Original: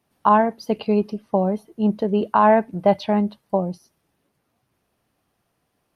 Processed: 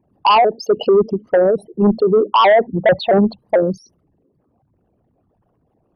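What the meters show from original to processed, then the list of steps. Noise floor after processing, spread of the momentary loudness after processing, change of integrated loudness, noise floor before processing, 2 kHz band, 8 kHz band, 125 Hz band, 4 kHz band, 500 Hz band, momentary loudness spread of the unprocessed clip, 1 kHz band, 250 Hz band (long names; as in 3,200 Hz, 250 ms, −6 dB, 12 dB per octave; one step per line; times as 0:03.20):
−64 dBFS, 5 LU, +5.5 dB, −73 dBFS, +8.0 dB, can't be measured, +3.0 dB, +15.0 dB, +7.5 dB, 8 LU, +4.0 dB, +2.0 dB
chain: spectral envelope exaggerated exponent 3
harmonic generator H 5 −9 dB, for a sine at −4.5 dBFS
pitch modulation by a square or saw wave saw up 4.5 Hz, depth 160 cents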